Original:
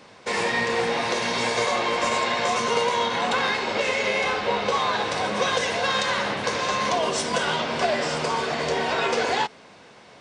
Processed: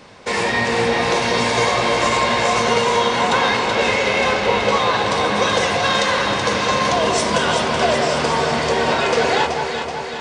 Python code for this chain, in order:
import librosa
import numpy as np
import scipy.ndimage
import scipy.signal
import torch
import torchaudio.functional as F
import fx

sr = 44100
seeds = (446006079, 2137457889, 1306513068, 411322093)

y = fx.low_shelf(x, sr, hz=85.0, db=11.5)
y = fx.echo_alternate(y, sr, ms=189, hz=1000.0, feedback_pct=78, wet_db=-4)
y = y * librosa.db_to_amplitude(4.5)